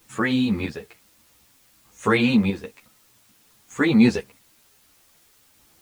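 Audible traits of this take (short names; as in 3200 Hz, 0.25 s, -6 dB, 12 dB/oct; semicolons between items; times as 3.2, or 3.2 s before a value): chopped level 0.54 Hz, depth 60%, duty 35%; a quantiser's noise floor 10-bit, dither triangular; a shimmering, thickened sound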